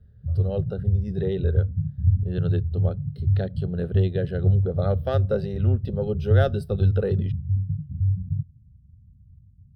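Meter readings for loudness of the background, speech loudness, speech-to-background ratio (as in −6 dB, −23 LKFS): −25.5 LKFS, −29.5 LKFS, −4.0 dB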